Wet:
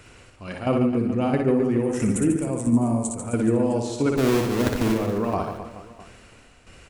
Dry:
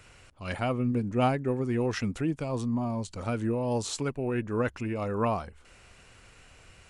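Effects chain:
0:04.16–0:04.92: each half-wave held at its own peak
parametric band 310 Hz +6 dB 1.6 octaves
shaped tremolo saw down 1.5 Hz, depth 75%
0:01.83–0:03.35: high shelf with overshoot 6,200 Hz +12 dB, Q 3
on a send: reverse bouncing-ball delay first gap 60 ms, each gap 1.4×, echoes 5
on the sum: four-comb reverb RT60 2.8 s, combs from 28 ms, DRR 19 dB
level +4.5 dB

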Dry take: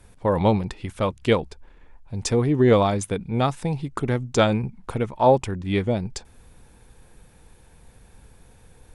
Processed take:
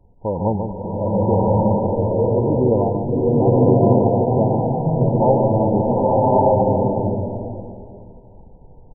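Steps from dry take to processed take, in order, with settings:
linear-phase brick-wall low-pass 1,000 Hz
single-tap delay 143 ms −7 dB
slow-attack reverb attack 1,210 ms, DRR −6.5 dB
level −1.5 dB

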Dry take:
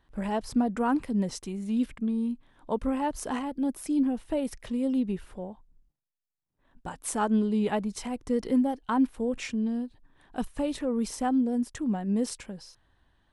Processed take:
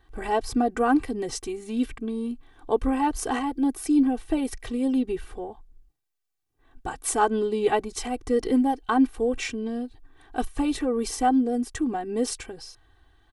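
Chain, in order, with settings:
comb filter 2.6 ms, depth 88%
level +3.5 dB

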